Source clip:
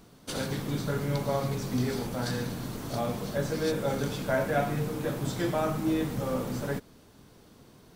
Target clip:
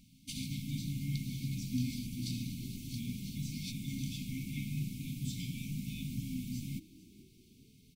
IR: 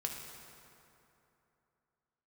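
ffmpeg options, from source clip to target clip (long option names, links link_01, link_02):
-filter_complex "[0:a]afftfilt=real='re*(1-between(b*sr/4096,280,2100))':imag='im*(1-between(b*sr/4096,280,2100))':win_size=4096:overlap=0.75,asplit=4[link_01][link_02][link_03][link_04];[link_02]adelay=440,afreqshift=61,volume=-20dB[link_05];[link_03]adelay=880,afreqshift=122,volume=-29.4dB[link_06];[link_04]adelay=1320,afreqshift=183,volume=-38.7dB[link_07];[link_01][link_05][link_06][link_07]amix=inputs=4:normalize=0,volume=-5dB"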